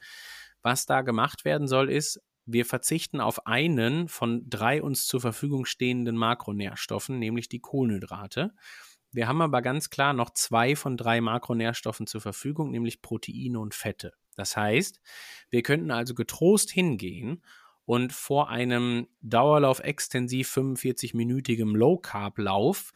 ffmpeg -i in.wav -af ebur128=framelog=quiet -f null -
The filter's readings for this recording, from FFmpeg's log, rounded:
Integrated loudness:
  I:         -27.1 LUFS
  Threshold: -37.4 LUFS
Loudness range:
  LRA:         4.9 LU
  Threshold: -47.5 LUFS
  LRA low:   -30.7 LUFS
  LRA high:  -25.8 LUFS